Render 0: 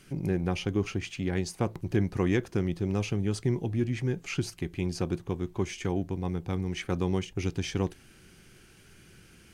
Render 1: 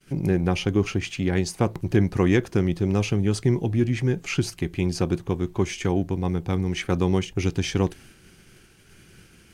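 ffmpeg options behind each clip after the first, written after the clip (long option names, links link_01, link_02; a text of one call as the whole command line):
ffmpeg -i in.wav -af "agate=range=-33dB:threshold=-50dB:ratio=3:detection=peak,volume=6.5dB" out.wav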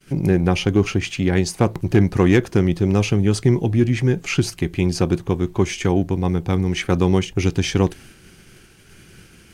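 ffmpeg -i in.wav -af "asoftclip=type=hard:threshold=-11dB,volume=5dB" out.wav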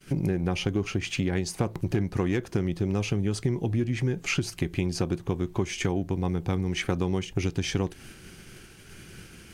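ffmpeg -i in.wav -af "acompressor=threshold=-24dB:ratio=5" out.wav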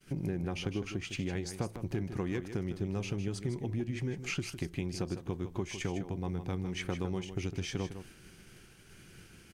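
ffmpeg -i in.wav -af "aecho=1:1:156:0.316,volume=-8.5dB" out.wav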